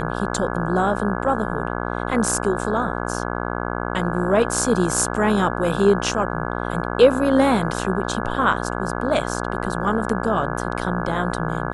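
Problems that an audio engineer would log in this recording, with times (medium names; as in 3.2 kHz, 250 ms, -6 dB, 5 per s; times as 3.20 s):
buzz 60 Hz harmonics 28 -26 dBFS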